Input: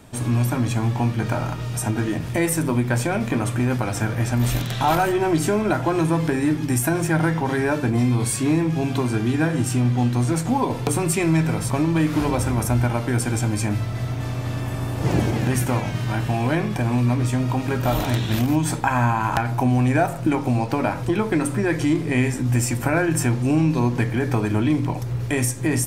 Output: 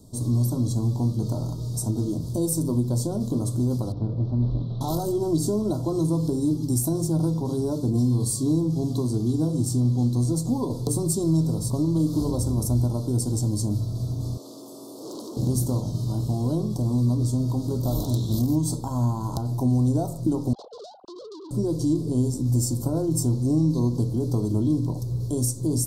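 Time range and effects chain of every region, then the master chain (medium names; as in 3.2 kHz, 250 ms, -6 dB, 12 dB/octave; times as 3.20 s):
3.92–4.81 s: CVSD coder 32 kbps + distance through air 460 m
14.37–15.37 s: high-pass 300 Hz 24 dB/octave + transformer saturation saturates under 2.7 kHz
20.53–21.51 s: formants replaced by sine waves + compression 8:1, threshold -24 dBFS + transformer saturation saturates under 2.4 kHz
whole clip: elliptic band-stop 990–4200 Hz, stop band 60 dB; peaking EQ 850 Hz -13.5 dB 0.81 oct; trim -1.5 dB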